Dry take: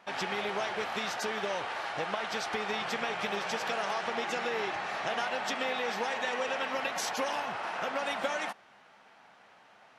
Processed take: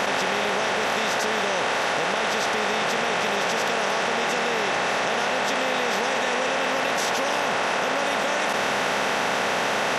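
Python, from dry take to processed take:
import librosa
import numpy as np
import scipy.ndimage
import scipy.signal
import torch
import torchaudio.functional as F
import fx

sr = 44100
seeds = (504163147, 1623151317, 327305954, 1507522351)

y = fx.bin_compress(x, sr, power=0.4)
y = fx.env_flatten(y, sr, amount_pct=100)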